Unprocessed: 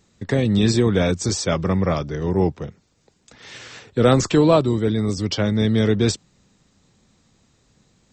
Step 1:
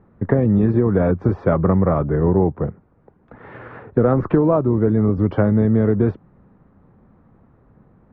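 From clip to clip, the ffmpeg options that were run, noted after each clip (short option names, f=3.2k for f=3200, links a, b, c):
-af "lowpass=f=1.4k:w=0.5412,lowpass=f=1.4k:w=1.3066,acompressor=threshold=-20dB:ratio=12,volume=8.5dB"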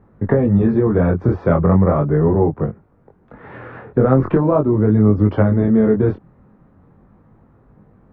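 -af "flanger=delay=19:depth=5:speed=0.4,volume=5dB"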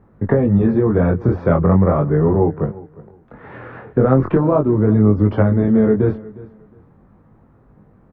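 -af "aecho=1:1:359|718:0.1|0.022"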